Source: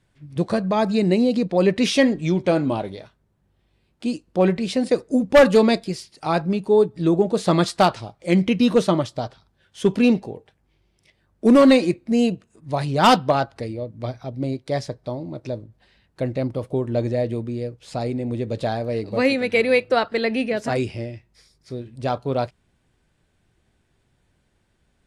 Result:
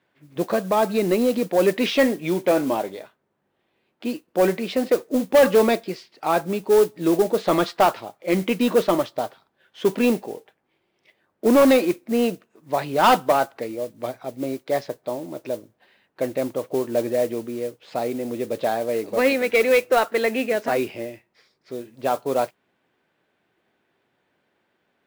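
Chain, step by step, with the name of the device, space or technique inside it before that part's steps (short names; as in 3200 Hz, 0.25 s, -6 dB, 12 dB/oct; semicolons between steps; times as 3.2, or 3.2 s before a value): carbon microphone (BPF 320–3000 Hz; soft clip -11.5 dBFS, distortion -14 dB; modulation noise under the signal 20 dB); gain +3 dB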